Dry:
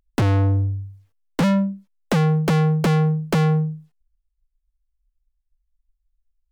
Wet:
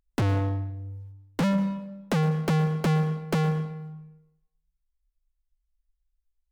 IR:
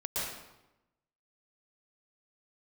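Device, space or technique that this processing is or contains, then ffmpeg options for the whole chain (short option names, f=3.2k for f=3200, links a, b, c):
saturated reverb return: -filter_complex "[0:a]asplit=2[a][b];[1:a]atrim=start_sample=2205[c];[b][c]afir=irnorm=-1:irlink=0,asoftclip=type=tanh:threshold=-8dB,volume=-13.5dB[d];[a][d]amix=inputs=2:normalize=0,volume=-7dB"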